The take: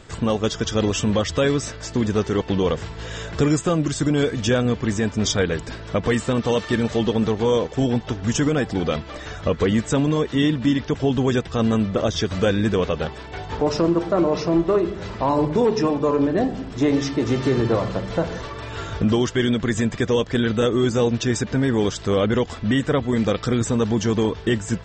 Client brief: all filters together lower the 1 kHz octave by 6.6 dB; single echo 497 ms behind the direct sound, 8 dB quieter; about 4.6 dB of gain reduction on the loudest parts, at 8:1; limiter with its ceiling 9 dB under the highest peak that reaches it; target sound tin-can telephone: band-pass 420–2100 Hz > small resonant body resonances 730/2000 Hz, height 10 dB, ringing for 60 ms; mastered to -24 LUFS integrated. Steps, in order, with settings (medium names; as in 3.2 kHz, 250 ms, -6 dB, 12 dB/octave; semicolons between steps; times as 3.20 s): peaking EQ 1 kHz -8 dB; compression 8:1, threshold -20 dBFS; peak limiter -21 dBFS; band-pass 420–2100 Hz; delay 497 ms -8 dB; small resonant body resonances 730/2000 Hz, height 10 dB, ringing for 60 ms; trim +11 dB